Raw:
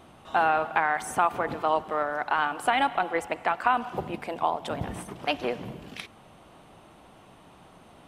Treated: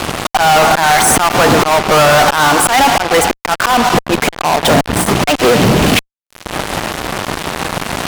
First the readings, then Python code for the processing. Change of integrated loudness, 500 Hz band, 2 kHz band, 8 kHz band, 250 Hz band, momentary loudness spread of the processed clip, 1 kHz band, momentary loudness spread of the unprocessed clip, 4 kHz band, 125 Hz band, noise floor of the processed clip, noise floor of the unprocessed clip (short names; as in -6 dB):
+16.0 dB, +18.0 dB, +16.5 dB, +29.0 dB, +21.5 dB, 11 LU, +14.5 dB, 12 LU, +23.5 dB, +24.0 dB, -60 dBFS, -53 dBFS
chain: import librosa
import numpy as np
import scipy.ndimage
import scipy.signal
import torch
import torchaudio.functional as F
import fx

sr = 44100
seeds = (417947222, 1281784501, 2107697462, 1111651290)

y = fx.auto_swell(x, sr, attack_ms=595.0)
y = fx.fuzz(y, sr, gain_db=54.0, gate_db=-49.0)
y = y * librosa.db_to_amplitude(6.5)